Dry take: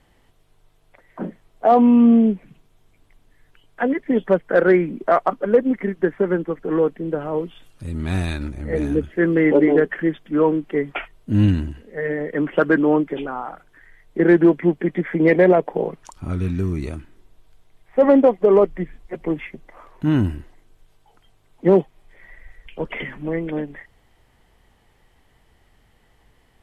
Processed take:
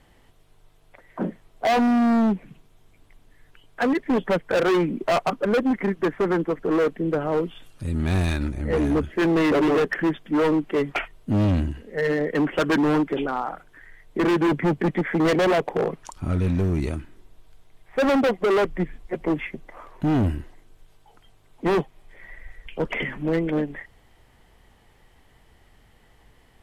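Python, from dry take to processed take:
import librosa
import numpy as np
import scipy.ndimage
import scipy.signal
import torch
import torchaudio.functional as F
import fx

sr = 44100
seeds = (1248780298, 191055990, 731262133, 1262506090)

y = fx.peak_eq(x, sr, hz=110.0, db=8.5, octaves=2.2, at=(14.48, 14.91))
y = np.clip(y, -10.0 ** (-19.5 / 20.0), 10.0 ** (-19.5 / 20.0))
y = F.gain(torch.from_numpy(y), 2.0).numpy()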